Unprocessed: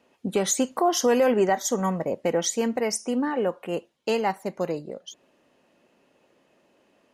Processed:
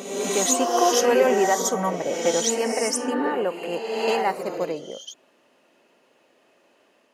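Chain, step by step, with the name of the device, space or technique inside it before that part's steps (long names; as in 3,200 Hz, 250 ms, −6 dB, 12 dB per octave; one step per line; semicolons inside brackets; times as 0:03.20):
ghost voice (reversed playback; convolution reverb RT60 1.5 s, pre-delay 55 ms, DRR 1.5 dB; reversed playback; high-pass filter 410 Hz 6 dB per octave)
level +2.5 dB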